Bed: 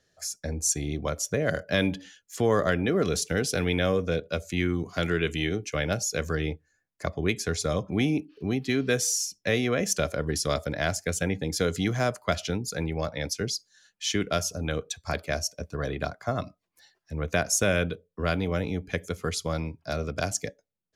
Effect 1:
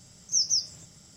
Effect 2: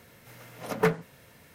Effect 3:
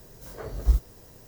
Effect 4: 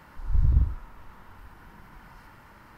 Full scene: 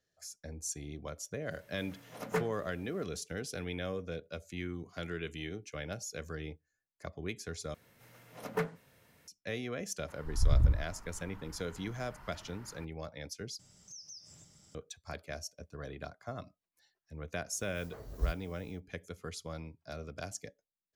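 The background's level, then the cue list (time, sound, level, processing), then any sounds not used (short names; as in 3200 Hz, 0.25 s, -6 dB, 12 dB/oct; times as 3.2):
bed -13 dB
1.51 add 2 -9 dB
7.74 replace with 2 -9.5 dB
10.08 add 4 -4 dB
13.59 replace with 1 -8.5 dB + compressor 4:1, threshold -41 dBFS
17.54 add 3 -11.5 dB, fades 0.10 s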